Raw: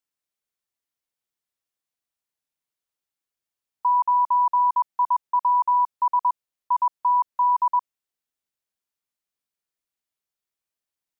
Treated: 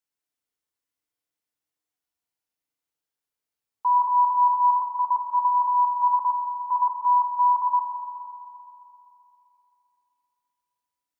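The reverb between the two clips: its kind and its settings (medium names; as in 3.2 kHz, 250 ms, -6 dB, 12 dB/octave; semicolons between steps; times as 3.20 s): FDN reverb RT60 3 s, high-frequency decay 0.5×, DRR -0.5 dB; trim -3 dB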